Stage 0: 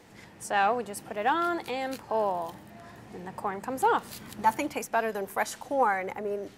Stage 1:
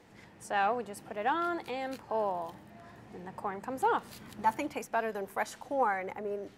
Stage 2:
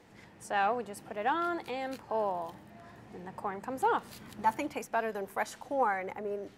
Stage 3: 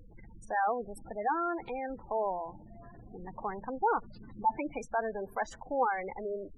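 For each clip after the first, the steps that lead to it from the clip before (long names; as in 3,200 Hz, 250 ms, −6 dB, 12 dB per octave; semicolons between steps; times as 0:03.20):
high-shelf EQ 4,800 Hz −6 dB; level −4 dB
no processing that can be heard
background noise brown −51 dBFS; gate on every frequency bin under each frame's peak −15 dB strong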